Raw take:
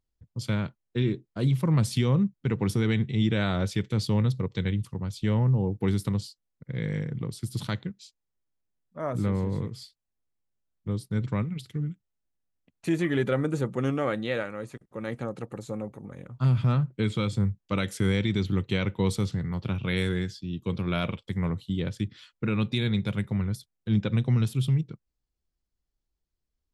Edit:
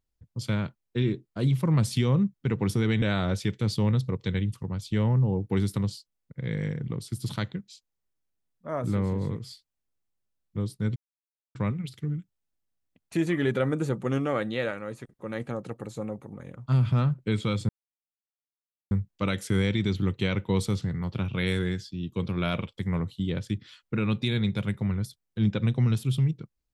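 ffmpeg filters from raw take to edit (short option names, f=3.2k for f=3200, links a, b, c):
-filter_complex "[0:a]asplit=4[a][b][c][d];[a]atrim=end=3.022[e];[b]atrim=start=3.328:end=11.27,asetpts=PTS-STARTPTS,afade=t=out:st=7.938:d=0.004:c=hsin,apad=pad_dur=0.59[f];[c]atrim=start=11.27:end=17.41,asetpts=PTS-STARTPTS,afade=t=in:d=0.004:c=hsin,afade=t=out:st=6.136:d=0.004:c=hsin,apad=pad_dur=1.22[g];[d]atrim=start=17.41,asetpts=PTS-STARTPTS,afade=t=in:d=0.004:c=hsin[h];[f][g][h]concat=n=3:v=0:a=1[i];[e][i]acrossfade=d=0.004:c1=hsin:c2=hsin"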